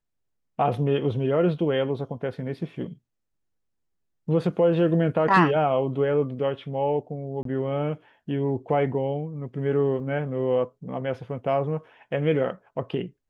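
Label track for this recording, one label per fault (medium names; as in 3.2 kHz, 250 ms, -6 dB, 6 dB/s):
7.430000	7.450000	dropout 23 ms
10.000000	10.000000	dropout 3.6 ms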